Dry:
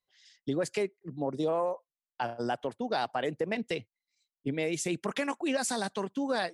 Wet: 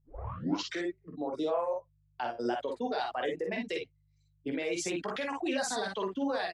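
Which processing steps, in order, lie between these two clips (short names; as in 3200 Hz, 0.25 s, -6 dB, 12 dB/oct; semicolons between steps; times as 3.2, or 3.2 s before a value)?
tape start at the beginning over 0.94 s; three-band isolator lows -16 dB, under 230 Hz, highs -15 dB, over 6400 Hz; reverb removal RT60 1.5 s; limiter -28.5 dBFS, peak gain reduction 9 dB; buzz 50 Hz, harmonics 3, -74 dBFS -1 dB/oct; on a send: early reflections 16 ms -9.5 dB, 47 ms -5 dB, 58 ms -5.5 dB; on the sum: gain +2.5 dB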